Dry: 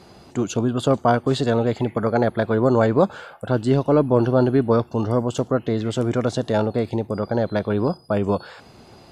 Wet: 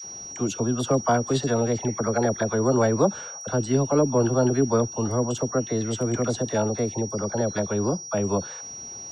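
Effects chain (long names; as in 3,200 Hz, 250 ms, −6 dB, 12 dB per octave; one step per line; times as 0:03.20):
steady tone 5,700 Hz −32 dBFS
all-pass dispersion lows, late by 44 ms, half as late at 760 Hz
level −3.5 dB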